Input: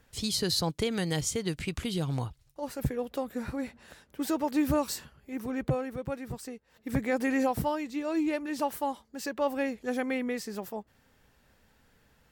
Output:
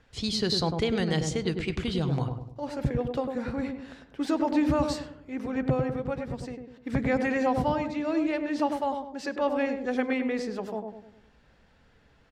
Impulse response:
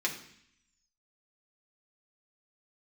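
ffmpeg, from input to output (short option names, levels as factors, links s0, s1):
-filter_complex "[0:a]lowpass=4700,asplit=2[s0][s1];[s1]adelay=100,lowpass=f=840:p=1,volume=0.668,asplit=2[s2][s3];[s3]adelay=100,lowpass=f=840:p=1,volume=0.49,asplit=2[s4][s5];[s5]adelay=100,lowpass=f=840:p=1,volume=0.49,asplit=2[s6][s7];[s7]adelay=100,lowpass=f=840:p=1,volume=0.49,asplit=2[s8][s9];[s9]adelay=100,lowpass=f=840:p=1,volume=0.49,asplit=2[s10][s11];[s11]adelay=100,lowpass=f=840:p=1,volume=0.49[s12];[s0][s2][s4][s6][s8][s10][s12]amix=inputs=7:normalize=0,asplit=2[s13][s14];[1:a]atrim=start_sample=2205,asetrate=83790,aresample=44100[s15];[s14][s15]afir=irnorm=-1:irlink=0,volume=0.224[s16];[s13][s16]amix=inputs=2:normalize=0,volume=1.19"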